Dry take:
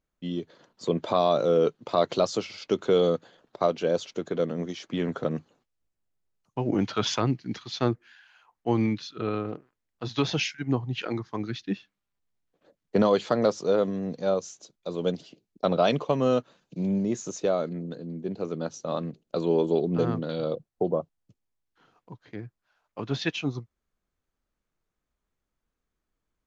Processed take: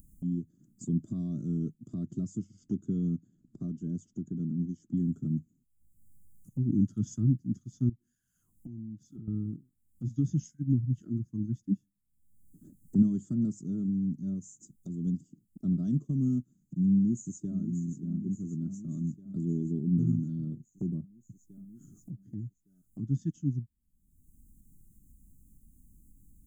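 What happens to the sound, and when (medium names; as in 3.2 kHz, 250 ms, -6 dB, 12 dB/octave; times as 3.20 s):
1.88–4.97 s: distance through air 71 m
7.89–9.28 s: compression, threshold -41 dBFS
16.93–17.59 s: echo throw 580 ms, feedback 65%, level -9.5 dB
whole clip: inverse Chebyshev band-stop 470–4400 Hz, stop band 40 dB; peaking EQ 5.7 kHz -9 dB 0.25 oct; upward compressor, threshold -40 dBFS; trim +3 dB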